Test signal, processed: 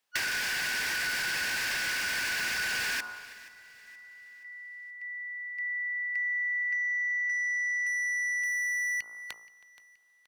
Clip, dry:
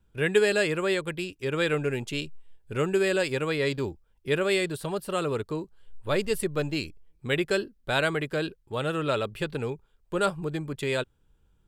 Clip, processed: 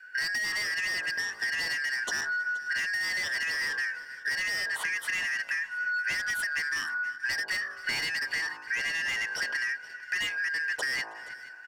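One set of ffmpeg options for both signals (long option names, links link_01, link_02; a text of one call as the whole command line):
ffmpeg -i in.wav -filter_complex "[0:a]afftfilt=real='real(if(lt(b,272),68*(eq(floor(b/68),0)*2+eq(floor(b/68),1)*0+eq(floor(b/68),2)*3+eq(floor(b/68),3)*1)+mod(b,68),b),0)':imag='imag(if(lt(b,272),68*(eq(floor(b/68),0)*2+eq(floor(b/68),1)*0+eq(floor(b/68),2)*3+eq(floor(b/68),3)*1)+mod(b,68),b),0)':win_size=2048:overlap=0.75,bandreject=frequency=56.04:width_type=h:width=4,bandreject=frequency=112.08:width_type=h:width=4,bandreject=frequency=168.12:width_type=h:width=4,bandreject=frequency=224.16:width_type=h:width=4,bandreject=frequency=280.2:width_type=h:width=4,bandreject=frequency=336.24:width_type=h:width=4,bandreject=frequency=392.28:width_type=h:width=4,bandreject=frequency=448.32:width_type=h:width=4,bandreject=frequency=504.36:width_type=h:width=4,bandreject=frequency=560.4:width_type=h:width=4,bandreject=frequency=616.44:width_type=h:width=4,bandreject=frequency=672.48:width_type=h:width=4,bandreject=frequency=728.52:width_type=h:width=4,bandreject=frequency=784.56:width_type=h:width=4,bandreject=frequency=840.6:width_type=h:width=4,bandreject=frequency=896.64:width_type=h:width=4,bandreject=frequency=952.68:width_type=h:width=4,bandreject=frequency=1008.72:width_type=h:width=4,bandreject=frequency=1064.76:width_type=h:width=4,bandreject=frequency=1120.8:width_type=h:width=4,bandreject=frequency=1176.84:width_type=h:width=4,bandreject=frequency=1232.88:width_type=h:width=4,bandreject=frequency=1288.92:width_type=h:width=4,bandreject=frequency=1344.96:width_type=h:width=4,bandreject=frequency=1401:width_type=h:width=4,bandreject=frequency=1457.04:width_type=h:width=4,adynamicequalizer=threshold=0.00501:dfrequency=950:dqfactor=1.8:tfrequency=950:tqfactor=1.8:attack=5:release=100:ratio=0.375:range=2:mode=boostabove:tftype=bell,asplit=2[link_01][link_02];[link_02]highpass=frequency=720:poles=1,volume=23dB,asoftclip=type=tanh:threshold=-8dB[link_03];[link_01][link_03]amix=inputs=2:normalize=0,lowpass=frequency=3000:poles=1,volume=-6dB,acrossover=split=370|2200[link_04][link_05][link_06];[link_05]alimiter=limit=-24dB:level=0:latency=1:release=53[link_07];[link_04][link_07][link_06]amix=inputs=3:normalize=0,asplit=2[link_08][link_09];[link_09]adelay=320.7,volume=-24dB,highshelf=frequency=4000:gain=-7.22[link_10];[link_08][link_10]amix=inputs=2:normalize=0,acompressor=threshold=-28dB:ratio=10,asplit=2[link_11][link_12];[link_12]aecho=0:1:475|950|1425|1900:0.106|0.0487|0.0224|0.0103[link_13];[link_11][link_13]amix=inputs=2:normalize=0" out.wav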